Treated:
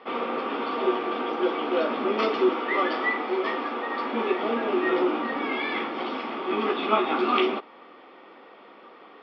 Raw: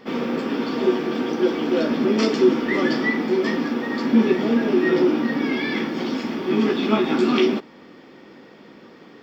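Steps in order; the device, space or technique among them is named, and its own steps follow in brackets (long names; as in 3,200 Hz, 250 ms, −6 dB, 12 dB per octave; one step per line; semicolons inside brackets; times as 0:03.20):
0:02.49–0:04.42: high-pass filter 260 Hz 12 dB per octave
phone earpiece (loudspeaker in its box 480–3,400 Hz, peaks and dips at 750 Hz +4 dB, 1,200 Hz +7 dB, 1,700 Hz −6 dB)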